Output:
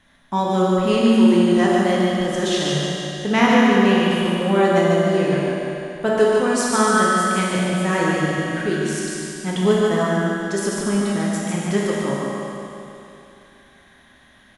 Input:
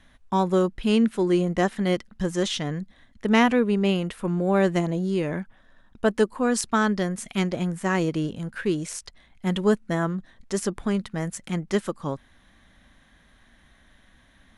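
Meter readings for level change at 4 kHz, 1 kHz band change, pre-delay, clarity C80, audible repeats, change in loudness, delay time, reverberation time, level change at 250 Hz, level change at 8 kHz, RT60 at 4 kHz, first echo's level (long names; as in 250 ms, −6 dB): +7.5 dB, +8.0 dB, 9 ms, −3.0 dB, 1, +6.0 dB, 147 ms, 2.9 s, +6.0 dB, +7.5 dB, 2.9 s, −4.5 dB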